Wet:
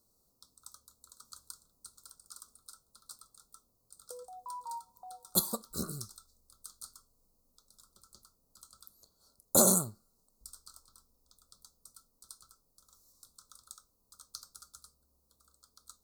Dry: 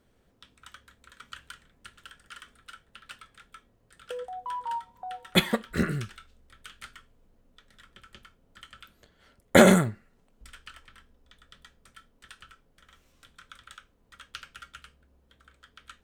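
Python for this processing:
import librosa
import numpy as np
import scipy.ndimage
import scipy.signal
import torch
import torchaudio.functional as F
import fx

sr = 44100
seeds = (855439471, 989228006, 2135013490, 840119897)

y = scipy.signal.sosfilt(scipy.signal.ellip(3, 1.0, 40, [1200.0, 4300.0], 'bandstop', fs=sr, output='sos'), x)
y = F.preemphasis(torch.from_numpy(y), 0.9).numpy()
y = 10.0 ** (-13.0 / 20.0) * np.tanh(y / 10.0 ** (-13.0 / 20.0))
y = y * librosa.db_to_amplitude(7.5)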